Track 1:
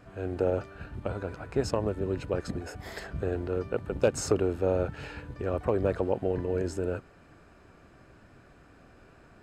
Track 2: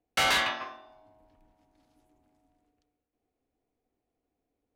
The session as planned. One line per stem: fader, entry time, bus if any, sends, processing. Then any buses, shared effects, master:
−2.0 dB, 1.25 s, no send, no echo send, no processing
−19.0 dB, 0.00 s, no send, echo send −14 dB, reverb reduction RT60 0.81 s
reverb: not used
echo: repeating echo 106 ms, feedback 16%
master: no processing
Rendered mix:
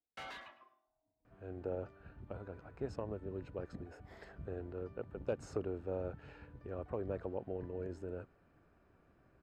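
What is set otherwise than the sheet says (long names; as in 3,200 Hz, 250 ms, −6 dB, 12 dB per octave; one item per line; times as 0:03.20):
stem 1 −2.0 dB → −12.5 dB
master: extra low-pass filter 1,800 Hz 6 dB per octave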